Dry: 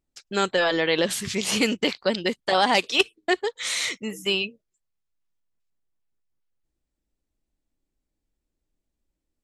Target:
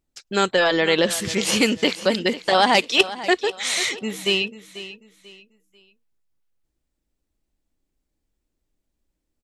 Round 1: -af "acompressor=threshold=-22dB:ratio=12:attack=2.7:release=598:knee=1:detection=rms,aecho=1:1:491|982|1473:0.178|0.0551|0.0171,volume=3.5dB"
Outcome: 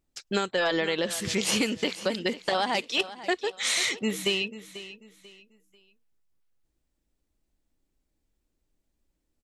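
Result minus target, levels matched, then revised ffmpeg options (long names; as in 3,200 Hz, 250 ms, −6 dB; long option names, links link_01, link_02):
downward compressor: peak gain reduction +12.5 dB
-af "aecho=1:1:491|982|1473:0.178|0.0551|0.0171,volume=3.5dB"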